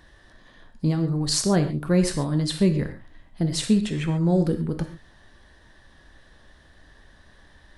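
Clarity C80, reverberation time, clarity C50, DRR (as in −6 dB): 12.5 dB, non-exponential decay, 10.0 dB, 6.5 dB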